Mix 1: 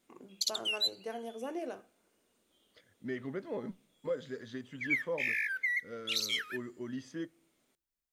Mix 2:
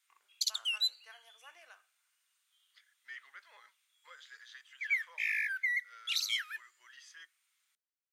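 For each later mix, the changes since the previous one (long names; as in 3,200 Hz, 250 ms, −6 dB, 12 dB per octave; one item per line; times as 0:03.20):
first voice: add spectral tilt −2.5 dB per octave
master: add high-pass filter 1,300 Hz 24 dB per octave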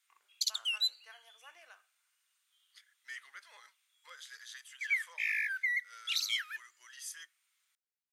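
second voice: remove high-frequency loss of the air 190 metres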